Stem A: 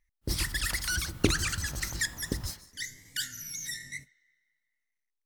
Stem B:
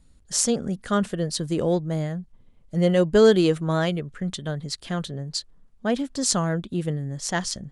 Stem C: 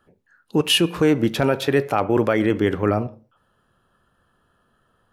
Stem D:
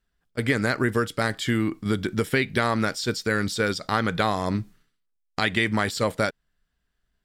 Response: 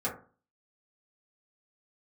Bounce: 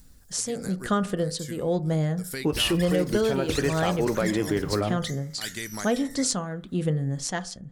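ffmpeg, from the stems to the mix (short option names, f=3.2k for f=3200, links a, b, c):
-filter_complex "[0:a]adelay=2250,volume=-2.5dB[a];[1:a]tremolo=f=1:d=0.76,asoftclip=type=hard:threshold=-11.5dB,volume=2.5dB,asplit=3[b][c][d];[c]volume=-16dB[e];[2:a]flanger=delay=4.6:depth=4.6:regen=-63:speed=0.47:shape=triangular,adelay=1900,volume=0.5dB[f];[3:a]aexciter=amount=9:drive=6.3:freq=4.5k,bass=f=250:g=-1,treble=f=4k:g=-4,acompressor=mode=upward:threshold=-32dB:ratio=2.5,volume=-12.5dB[g];[d]apad=whole_len=319506[h];[g][h]sidechaincompress=threshold=-39dB:ratio=8:attack=12:release=142[i];[4:a]atrim=start_sample=2205[j];[e][j]afir=irnorm=-1:irlink=0[k];[a][b][f][i][k]amix=inputs=5:normalize=0,acompressor=threshold=-20dB:ratio=6"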